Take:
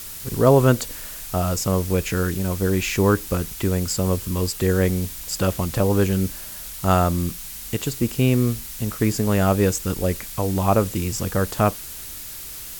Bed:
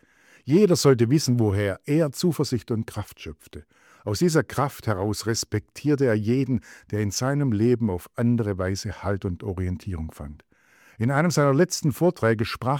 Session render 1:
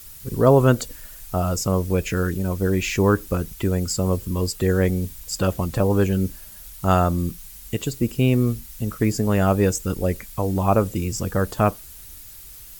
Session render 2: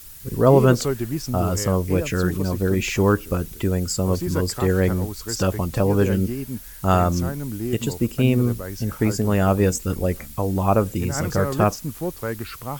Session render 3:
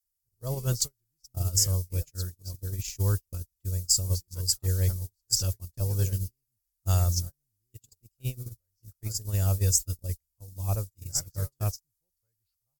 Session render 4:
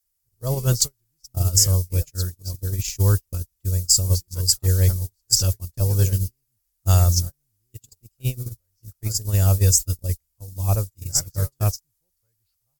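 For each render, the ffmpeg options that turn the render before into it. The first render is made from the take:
-af "afftdn=nr=10:nf=-36"
-filter_complex "[1:a]volume=0.447[s0];[0:a][s0]amix=inputs=2:normalize=0"
-af "firequalizer=gain_entry='entry(100,0);entry(170,-17);entry(260,-23);entry(510,-16);entry(1100,-20);entry(2500,-13);entry(4900,5)':delay=0.05:min_phase=1,agate=range=0.00501:threshold=0.0631:ratio=16:detection=peak"
-af "volume=2.51,alimiter=limit=0.708:level=0:latency=1"

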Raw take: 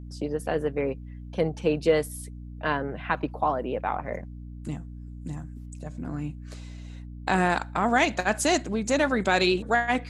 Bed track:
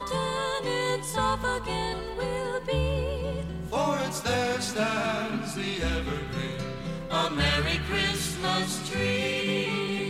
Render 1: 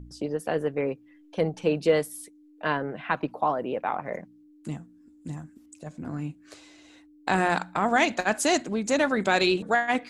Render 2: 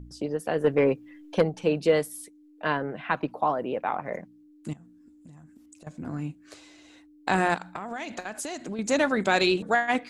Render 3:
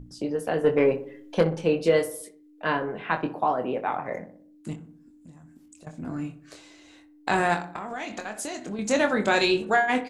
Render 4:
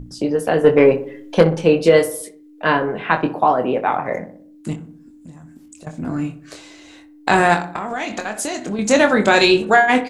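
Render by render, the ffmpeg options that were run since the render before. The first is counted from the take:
-af "bandreject=f=60:t=h:w=4,bandreject=f=120:t=h:w=4,bandreject=f=180:t=h:w=4,bandreject=f=240:t=h:w=4"
-filter_complex "[0:a]asettb=1/sr,asplit=3[s0][s1][s2];[s0]atrim=end=0.644[s3];[s1]atrim=start=0.64:end=1.42,asetpts=PTS-STARTPTS,afade=t=in:d=0.004:c=qsin,afade=t=out:st=0.776:d=0.004:c=qsin,aeval=exprs='0.237*sin(PI/2*1.41*val(0)/0.237)':c=same[s4];[s2]atrim=start=1.416[s5];[s3][s4]acrossfade=d=0.004:c1=hsin:c2=qsin[s6];[s6][s5]acrossfade=d=0.004:c1=qsin:c2=hsin,asettb=1/sr,asplit=3[s7][s8][s9];[s7]atrim=end=4.734[s10];[s8]atrim=start=4.73:end=5.87,asetpts=PTS-STARTPTS,afade=t=in:d=0.004:c=qsin,afade=t=out:st=1.136:d=0.004:c=qsin,acompressor=threshold=0.00562:ratio=10:attack=3.2:release=140:knee=1:detection=peak[s11];[s9]atrim=start=5.866[s12];[s10][s11]acrossfade=d=0.004:c1=hsin:c2=qsin[s13];[s13][s12]acrossfade=d=0.004:c1=qsin:c2=hsin,asettb=1/sr,asplit=3[s14][s15][s16];[s14]atrim=end=7.544[s17];[s15]atrim=start=7.54:end=8.79,asetpts=PTS-STARTPTS,afade=t=in:d=0.004:c=qsin,afade=t=out:st=1.246:d=0.004:c=qsin,acompressor=threshold=0.0316:ratio=16:attack=3.2:release=140:knee=1:detection=peak[s18];[s16]atrim=start=8.786[s19];[s17][s18]acrossfade=d=0.004:c1=hsin:c2=qsin[s20];[s20][s19]acrossfade=d=0.004:c1=qsin:c2=hsin"
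-filter_complex "[0:a]asplit=2[s0][s1];[s1]adelay=24,volume=0.473[s2];[s0][s2]amix=inputs=2:normalize=0,asplit=2[s3][s4];[s4]adelay=62,lowpass=f=1500:p=1,volume=0.266,asplit=2[s5][s6];[s6]adelay=62,lowpass=f=1500:p=1,volume=0.54,asplit=2[s7][s8];[s8]adelay=62,lowpass=f=1500:p=1,volume=0.54,asplit=2[s9][s10];[s10]adelay=62,lowpass=f=1500:p=1,volume=0.54,asplit=2[s11][s12];[s12]adelay=62,lowpass=f=1500:p=1,volume=0.54,asplit=2[s13][s14];[s14]adelay=62,lowpass=f=1500:p=1,volume=0.54[s15];[s3][s5][s7][s9][s11][s13][s15]amix=inputs=7:normalize=0"
-af "volume=2.82,alimiter=limit=0.891:level=0:latency=1"

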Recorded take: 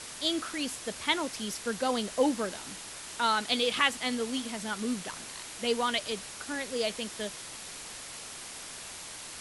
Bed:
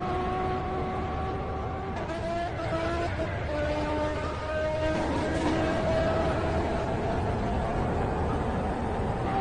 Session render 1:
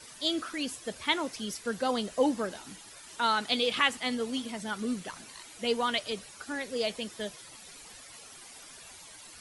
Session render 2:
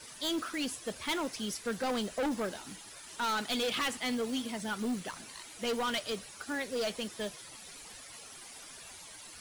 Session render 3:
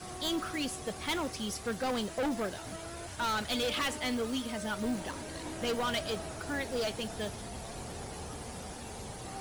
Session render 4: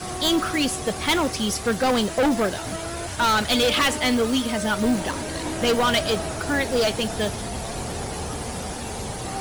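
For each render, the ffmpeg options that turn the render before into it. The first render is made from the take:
-af "afftdn=nr=12:nf=-44"
-af "acrusher=bits=5:mode=log:mix=0:aa=0.000001,asoftclip=type=hard:threshold=0.0355"
-filter_complex "[1:a]volume=0.178[s0];[0:a][s0]amix=inputs=2:normalize=0"
-af "volume=3.98"

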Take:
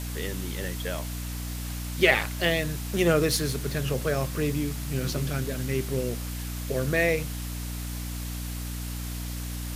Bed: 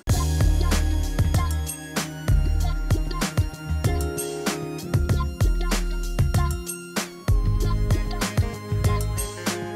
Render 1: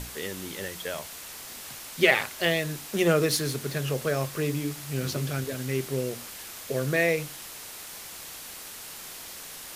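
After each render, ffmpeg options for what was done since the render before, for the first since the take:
-af "bandreject=f=60:t=h:w=6,bandreject=f=120:t=h:w=6,bandreject=f=180:t=h:w=6,bandreject=f=240:t=h:w=6,bandreject=f=300:t=h:w=6"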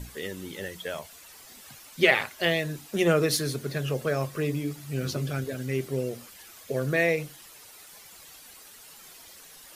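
-af "afftdn=nr=11:nf=-42"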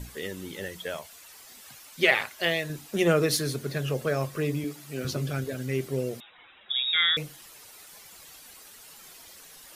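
-filter_complex "[0:a]asettb=1/sr,asplit=3[s0][s1][s2];[s0]atrim=end=0.964[s3];[s1]atrim=start=0.96:end=2.7,asetpts=PTS-STARTPTS,afade=t=in:d=0.004:c=qsin,afade=t=out:st=1.736:d=0.004:c=qsin,lowshelf=f=460:g=-5.5[s4];[s2]atrim=start=2.696[s5];[s3][s4]acrossfade=d=0.004:c1=hsin:c2=qsin[s6];[s6][s5]acrossfade=d=0.004:c1=qsin:c2=hsin,asettb=1/sr,asplit=3[s7][s8][s9];[s7]atrim=end=4.644[s10];[s8]atrim=start=4.64:end=5.05,asetpts=PTS-STARTPTS,afade=t=in:d=0.004:c=qsin,afade=t=out:st=0.406:d=0.004:c=qsin,highpass=220[s11];[s9]atrim=start=5.046[s12];[s10][s11]acrossfade=d=0.004:c1=hsin:c2=qsin[s13];[s13][s12]acrossfade=d=0.004:c1=qsin:c2=hsin,asettb=1/sr,asplit=3[s14][s15][s16];[s14]atrim=end=6.204[s17];[s15]atrim=start=6.2:end=7.17,asetpts=PTS-STARTPTS,afade=t=in:d=0.004:c=qsin,afade=t=out:st=0.966:d=0.004:c=qsin,lowpass=f=3300:t=q:w=0.5098,lowpass=f=3300:t=q:w=0.6013,lowpass=f=3300:t=q:w=0.9,lowpass=f=3300:t=q:w=2.563,afreqshift=-3900[s18];[s16]atrim=start=7.166[s19];[s17][s18]acrossfade=d=0.004:c1=hsin:c2=qsin[s20];[s20][s19]acrossfade=d=0.004:c1=qsin:c2=hsin"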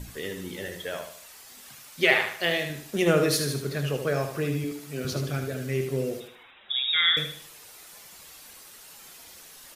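-filter_complex "[0:a]asplit=2[s0][s1];[s1]adelay=28,volume=0.224[s2];[s0][s2]amix=inputs=2:normalize=0,aecho=1:1:76|152|228|304:0.447|0.17|0.0645|0.0245"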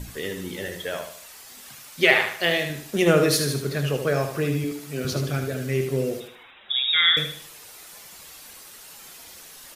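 -af "volume=1.5,alimiter=limit=0.708:level=0:latency=1"

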